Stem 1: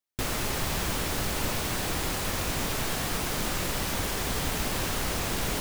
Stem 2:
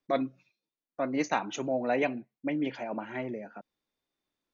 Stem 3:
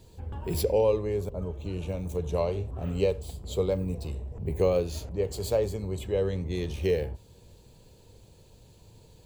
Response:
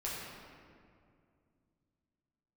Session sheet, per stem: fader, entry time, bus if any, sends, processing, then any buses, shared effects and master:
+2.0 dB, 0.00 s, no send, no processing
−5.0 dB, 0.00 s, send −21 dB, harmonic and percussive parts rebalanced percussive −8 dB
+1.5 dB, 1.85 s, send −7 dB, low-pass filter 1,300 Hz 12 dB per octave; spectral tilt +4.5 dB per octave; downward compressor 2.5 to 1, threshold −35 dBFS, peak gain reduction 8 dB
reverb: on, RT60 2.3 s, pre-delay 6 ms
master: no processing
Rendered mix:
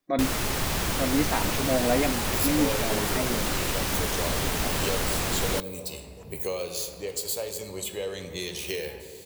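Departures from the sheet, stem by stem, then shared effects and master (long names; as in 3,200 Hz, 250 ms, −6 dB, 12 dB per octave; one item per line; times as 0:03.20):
stem 2 −5.0 dB → +5.5 dB
stem 3: missing low-pass filter 1,300 Hz 12 dB per octave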